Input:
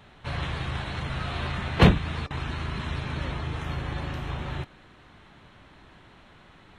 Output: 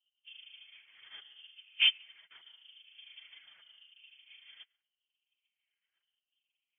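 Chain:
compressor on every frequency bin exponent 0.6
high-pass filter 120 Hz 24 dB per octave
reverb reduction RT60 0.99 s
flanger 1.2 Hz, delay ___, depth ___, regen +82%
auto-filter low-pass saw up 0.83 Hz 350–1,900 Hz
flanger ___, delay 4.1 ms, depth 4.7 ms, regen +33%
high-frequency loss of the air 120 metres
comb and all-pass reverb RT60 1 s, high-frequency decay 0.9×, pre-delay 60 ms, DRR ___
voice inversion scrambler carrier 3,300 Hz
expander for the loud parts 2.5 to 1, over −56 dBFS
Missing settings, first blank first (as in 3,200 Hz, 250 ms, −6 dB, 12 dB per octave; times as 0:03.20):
1.1 ms, 8.3 ms, 0.52 Hz, 9 dB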